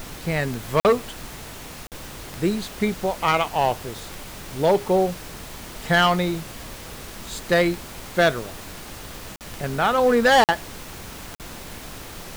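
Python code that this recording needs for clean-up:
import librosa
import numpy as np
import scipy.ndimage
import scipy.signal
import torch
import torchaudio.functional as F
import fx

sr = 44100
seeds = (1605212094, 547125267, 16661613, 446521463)

y = fx.fix_declick_ar(x, sr, threshold=10.0)
y = fx.fix_interpolate(y, sr, at_s=(0.8, 1.87, 9.36, 10.44, 11.35), length_ms=48.0)
y = fx.noise_reduce(y, sr, print_start_s=1.36, print_end_s=1.86, reduce_db=28.0)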